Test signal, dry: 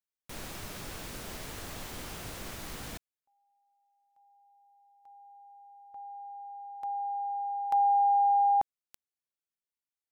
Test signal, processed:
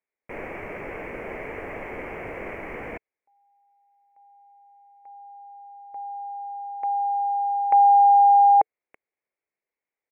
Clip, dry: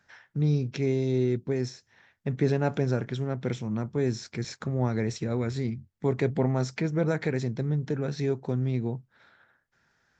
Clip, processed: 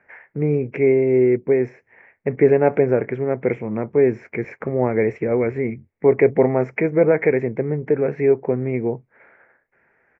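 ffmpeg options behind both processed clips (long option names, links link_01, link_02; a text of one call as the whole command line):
ffmpeg -i in.wav -af "firequalizer=gain_entry='entry(130,0);entry(440,15);entry(740,10);entry(1400,4);entry(2200,15);entry(3700,-29);entry(5900,-22)':delay=0.05:min_phase=1" out.wav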